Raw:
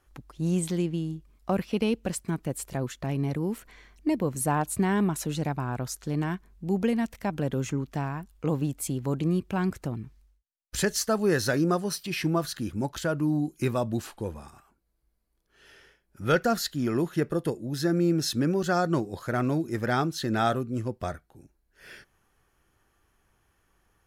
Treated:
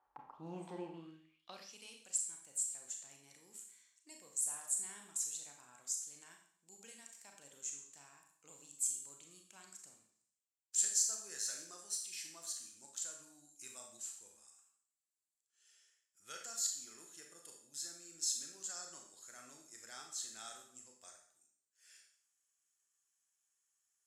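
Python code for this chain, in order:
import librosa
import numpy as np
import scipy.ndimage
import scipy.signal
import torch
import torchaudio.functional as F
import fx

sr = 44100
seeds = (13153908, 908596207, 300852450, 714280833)

y = fx.rev_schroeder(x, sr, rt60_s=0.6, comb_ms=28, drr_db=2.0)
y = fx.filter_sweep_bandpass(y, sr, from_hz=870.0, to_hz=7500.0, start_s=0.94, end_s=1.77, q=6.2)
y = y * librosa.db_to_amplitude(4.5)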